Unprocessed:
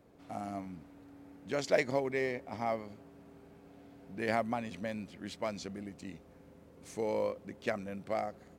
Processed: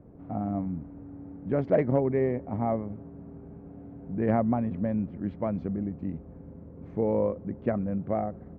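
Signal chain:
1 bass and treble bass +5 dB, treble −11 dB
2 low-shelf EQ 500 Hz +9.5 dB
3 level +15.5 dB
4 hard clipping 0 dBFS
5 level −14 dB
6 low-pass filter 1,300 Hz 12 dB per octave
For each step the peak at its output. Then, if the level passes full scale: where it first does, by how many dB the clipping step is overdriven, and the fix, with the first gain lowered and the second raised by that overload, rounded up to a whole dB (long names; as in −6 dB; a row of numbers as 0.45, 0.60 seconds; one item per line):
−14.5, −10.5, +5.0, 0.0, −14.0, −13.5 dBFS
step 3, 5.0 dB
step 3 +10.5 dB, step 5 −9 dB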